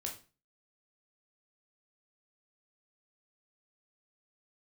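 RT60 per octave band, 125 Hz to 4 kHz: 0.45, 0.40, 0.35, 0.35, 0.35, 0.30 s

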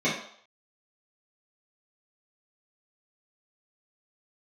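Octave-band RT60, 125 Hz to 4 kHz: 0.35, 0.45, 0.60, 0.65, 0.55, 0.60 s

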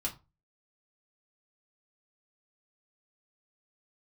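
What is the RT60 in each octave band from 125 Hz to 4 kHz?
0.40, 0.30, 0.25, 0.30, 0.20, 0.20 s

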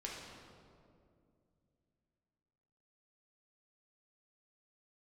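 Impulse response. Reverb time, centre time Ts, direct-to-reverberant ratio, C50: 2.4 s, 0.102 s, -4.0 dB, 0.0 dB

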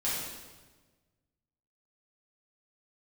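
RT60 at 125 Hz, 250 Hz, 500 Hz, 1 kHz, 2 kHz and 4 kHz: 1.9, 1.6, 1.4, 1.2, 1.1, 1.1 s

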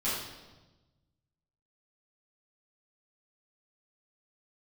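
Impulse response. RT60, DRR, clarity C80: 1.2 s, -11.0 dB, 3.5 dB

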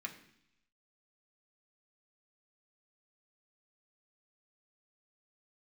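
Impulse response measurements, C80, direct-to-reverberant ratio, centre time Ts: 13.5 dB, 1.0 dB, 13 ms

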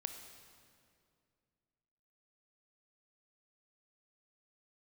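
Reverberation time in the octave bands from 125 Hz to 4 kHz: 2.8, 2.7, 2.5, 2.1, 1.9, 1.8 s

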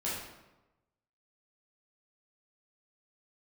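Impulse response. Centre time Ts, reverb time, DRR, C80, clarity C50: 68 ms, 1.0 s, -8.5 dB, 3.5 dB, 0.5 dB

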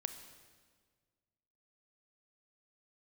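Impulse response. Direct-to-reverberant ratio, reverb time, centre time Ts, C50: 8.5 dB, 1.7 s, 18 ms, 9.5 dB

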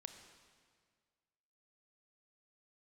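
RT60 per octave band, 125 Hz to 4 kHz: 1.9, 1.9, 1.9, 1.8, 1.7, 1.6 s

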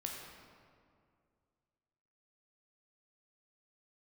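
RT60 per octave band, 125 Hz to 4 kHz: 2.6, 2.4, 2.3, 2.1, 1.7, 1.3 s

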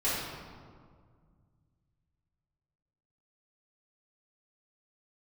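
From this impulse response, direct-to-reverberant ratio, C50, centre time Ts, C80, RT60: -12.0 dB, -1.5 dB, 0.103 s, 1.0 dB, 1.9 s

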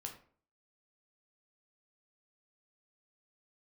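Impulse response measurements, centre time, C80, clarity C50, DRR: 16 ms, 13.5 dB, 9.0 dB, 2.0 dB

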